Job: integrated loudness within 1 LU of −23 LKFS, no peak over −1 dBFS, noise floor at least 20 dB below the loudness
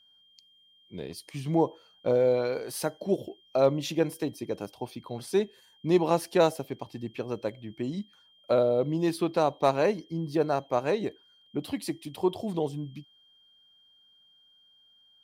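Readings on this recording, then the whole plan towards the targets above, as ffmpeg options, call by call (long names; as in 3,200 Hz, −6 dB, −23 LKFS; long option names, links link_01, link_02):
interfering tone 3,200 Hz; level of the tone −59 dBFS; integrated loudness −29.0 LKFS; sample peak −10.5 dBFS; target loudness −23.0 LKFS
→ -af "bandreject=frequency=3200:width=30"
-af "volume=6dB"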